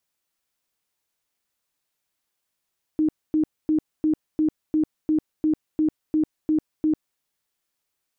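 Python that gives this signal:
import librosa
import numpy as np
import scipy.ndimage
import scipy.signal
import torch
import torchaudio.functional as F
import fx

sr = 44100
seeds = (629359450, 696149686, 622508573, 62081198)

y = fx.tone_burst(sr, hz=310.0, cycles=30, every_s=0.35, bursts=12, level_db=-17.0)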